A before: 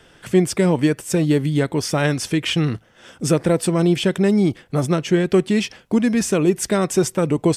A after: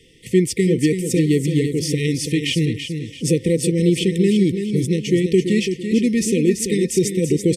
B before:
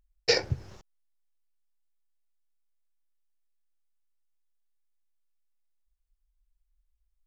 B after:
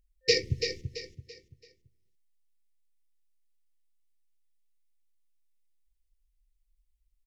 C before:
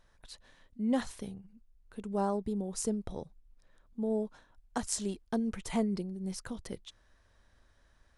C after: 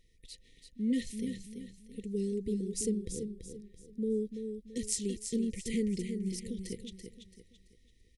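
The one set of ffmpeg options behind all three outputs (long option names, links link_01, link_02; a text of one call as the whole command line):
ffmpeg -i in.wav -af "equalizer=frequency=9400:width_type=o:width=0.25:gain=2.5,afftfilt=real='re*(1-between(b*sr/4096,520,1800))':imag='im*(1-between(b*sr/4096,520,1800))':win_size=4096:overlap=0.75,aecho=1:1:335|670|1005|1340:0.422|0.148|0.0517|0.0181" out.wav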